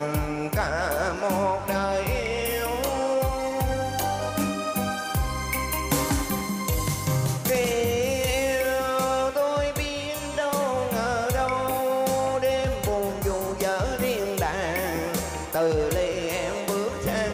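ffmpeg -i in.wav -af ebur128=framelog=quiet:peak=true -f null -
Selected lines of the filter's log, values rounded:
Integrated loudness:
  I:         -25.7 LUFS
  Threshold: -35.7 LUFS
Loudness range:
  LRA:         1.8 LU
  Threshold: -45.6 LUFS
  LRA low:   -26.4 LUFS
  LRA high:  -24.6 LUFS
True peak:
  Peak:      -13.6 dBFS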